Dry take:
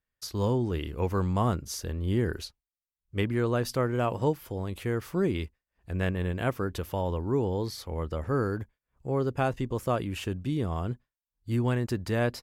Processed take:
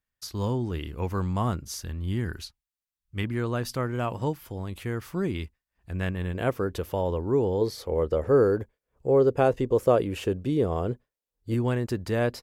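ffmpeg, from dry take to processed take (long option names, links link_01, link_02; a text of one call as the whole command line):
ffmpeg -i in.wav -af "asetnsamples=nb_out_samples=441:pad=0,asendcmd='1.81 equalizer g -10.5;3.24 equalizer g -4;6.35 equalizer g 5.5;7.61 equalizer g 12.5;11.54 equalizer g 3.5',equalizer=frequency=470:width_type=o:width=0.96:gain=-3.5" out.wav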